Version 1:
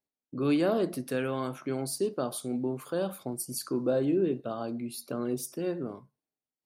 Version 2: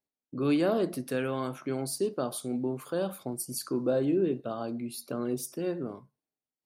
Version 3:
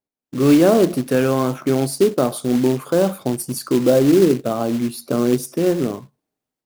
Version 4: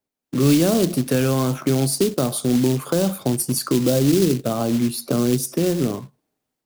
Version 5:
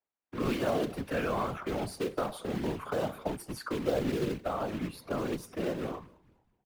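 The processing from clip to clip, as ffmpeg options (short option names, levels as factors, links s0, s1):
-af anull
-af "tiltshelf=f=1400:g=4,dynaudnorm=f=220:g=3:m=3.55,acrusher=bits=4:mode=log:mix=0:aa=0.000001"
-filter_complex "[0:a]acrossover=split=190|3000[s0][s1][s2];[s1]acompressor=threshold=0.0447:ratio=3[s3];[s0][s3][s2]amix=inputs=3:normalize=0,volume=1.68"
-filter_complex "[0:a]acrossover=split=570 2700:gain=0.224 1 0.1[s0][s1][s2];[s0][s1][s2]amix=inputs=3:normalize=0,asplit=4[s3][s4][s5][s6];[s4]adelay=219,afreqshift=-96,volume=0.0668[s7];[s5]adelay=438,afreqshift=-192,volume=0.0288[s8];[s6]adelay=657,afreqshift=-288,volume=0.0123[s9];[s3][s7][s8][s9]amix=inputs=4:normalize=0,afftfilt=real='hypot(re,im)*cos(2*PI*random(0))':imag='hypot(re,im)*sin(2*PI*random(1))':win_size=512:overlap=0.75,volume=1.26"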